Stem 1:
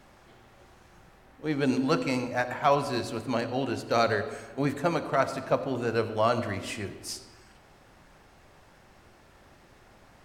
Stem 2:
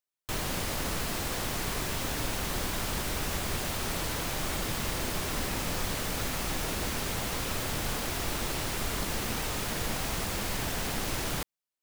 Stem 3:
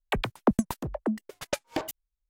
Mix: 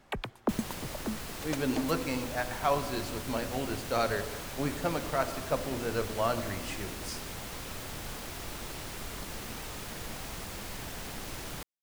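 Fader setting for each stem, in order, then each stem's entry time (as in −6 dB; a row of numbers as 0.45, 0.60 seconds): −5.0, −8.0, −7.5 decibels; 0.00, 0.20, 0.00 seconds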